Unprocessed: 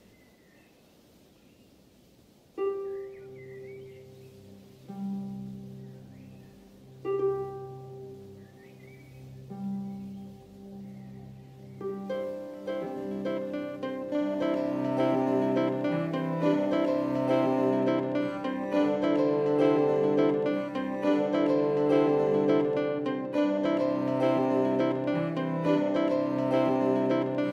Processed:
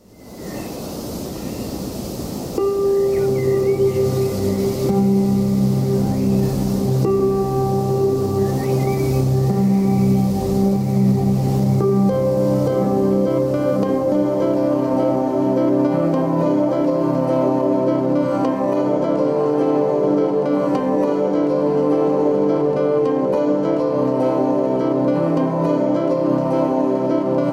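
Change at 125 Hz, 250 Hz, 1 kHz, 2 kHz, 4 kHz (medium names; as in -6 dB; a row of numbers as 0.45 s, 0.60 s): +18.0 dB, +11.5 dB, +10.0 dB, +3.5 dB, +7.5 dB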